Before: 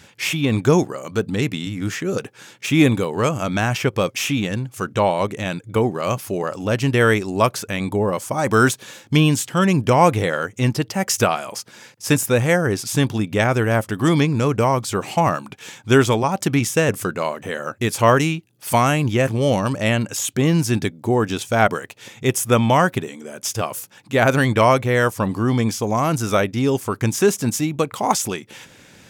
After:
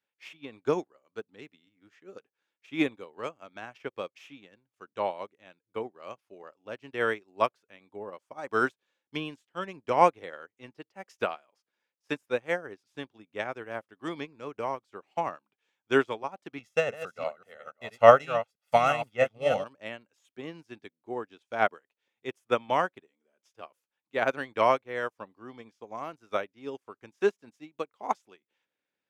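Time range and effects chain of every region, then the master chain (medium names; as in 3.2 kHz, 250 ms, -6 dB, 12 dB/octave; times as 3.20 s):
16.58–19.64 s: chunks repeated in reverse 329 ms, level -5.5 dB + comb 1.5 ms, depth 78%
whole clip: three-band isolator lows -17 dB, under 270 Hz, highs -15 dB, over 4.5 kHz; upward expansion 2.5:1, over -34 dBFS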